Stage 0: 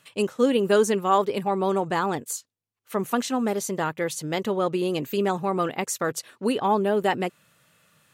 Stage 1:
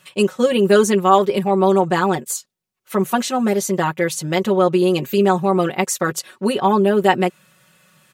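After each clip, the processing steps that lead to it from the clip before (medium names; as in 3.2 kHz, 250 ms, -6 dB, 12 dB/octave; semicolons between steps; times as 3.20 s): comb 5.4 ms, depth 84%; trim +4.5 dB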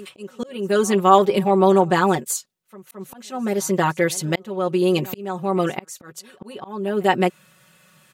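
reverse echo 216 ms -23.5 dB; slow attack 636 ms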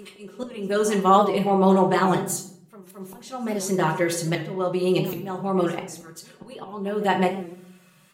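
simulated room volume 130 m³, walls mixed, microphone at 0.58 m; warped record 78 rpm, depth 100 cents; trim -4.5 dB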